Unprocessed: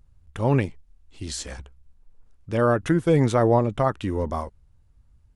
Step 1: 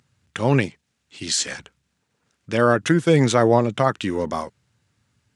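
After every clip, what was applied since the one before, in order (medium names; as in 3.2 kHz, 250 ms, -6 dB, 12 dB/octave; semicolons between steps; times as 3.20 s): dynamic bell 1.9 kHz, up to -4 dB, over -38 dBFS, Q 1.1; high-pass 120 Hz 24 dB/octave; high-order bell 3.4 kHz +8.5 dB 2.8 oct; trim +3 dB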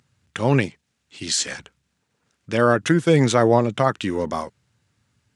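no audible change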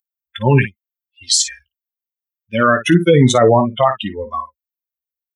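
expander on every frequency bin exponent 3; on a send: early reflections 16 ms -10.5 dB, 54 ms -12.5 dB; on the sum: loudness maximiser +14 dB; trim -1 dB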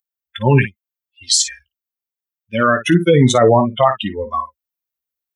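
gain riding within 4 dB 2 s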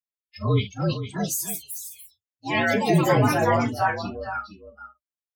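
frequency axis rescaled in octaves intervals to 115%; delay 460 ms -11 dB; ever faster or slower copies 439 ms, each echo +4 st, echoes 2; trim -8.5 dB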